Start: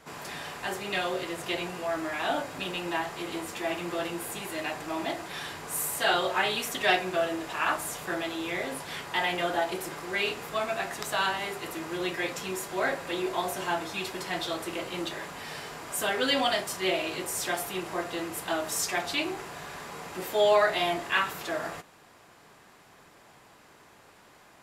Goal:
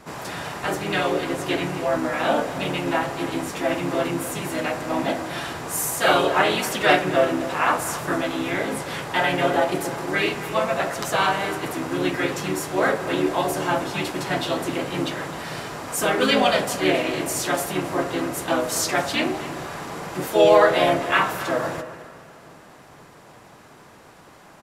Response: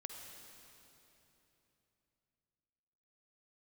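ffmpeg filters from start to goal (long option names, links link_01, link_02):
-filter_complex "[0:a]asplit=2[link_01][link_02];[link_02]lowpass=8100[link_03];[1:a]atrim=start_sample=2205,lowpass=2300[link_04];[link_03][link_04]afir=irnorm=-1:irlink=0,volume=-4.5dB[link_05];[link_01][link_05]amix=inputs=2:normalize=0,asplit=2[link_06][link_07];[link_07]asetrate=35002,aresample=44100,atempo=1.25992,volume=-3dB[link_08];[link_06][link_08]amix=inputs=2:normalize=0,equalizer=frequency=150:width=1.7:gain=3.5,asplit=2[link_09][link_10];[link_10]adelay=262.4,volume=-14dB,highshelf=frequency=4000:gain=-5.9[link_11];[link_09][link_11]amix=inputs=2:normalize=0,volume=4dB"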